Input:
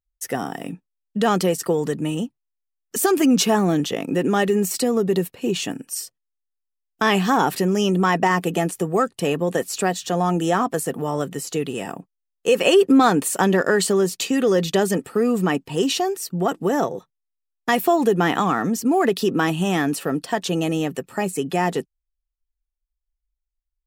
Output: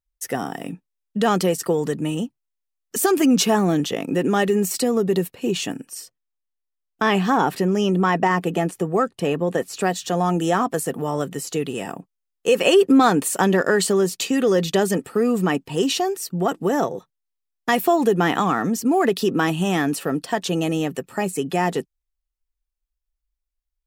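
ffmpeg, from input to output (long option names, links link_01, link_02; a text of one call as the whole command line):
ffmpeg -i in.wav -filter_complex "[0:a]asettb=1/sr,asplit=3[link_01][link_02][link_03];[link_01]atrim=end=5.884[link_04];[link_02]atrim=start=5.88:end=9.81,asetpts=PTS-STARTPTS,afade=type=in:duration=0.004:curve=qsin,afade=type=out:start_time=3.926:duration=0.004:curve=qsin,highshelf=frequency=4000:gain=-8[link_05];[link_03]atrim=start=9.806[link_06];[link_04][link_05]acrossfade=duration=0.004:curve1=hsin:curve2=qsin[link_07];[link_07][link_06]acrossfade=duration=0.004:curve1=qsin:curve2=hsin" out.wav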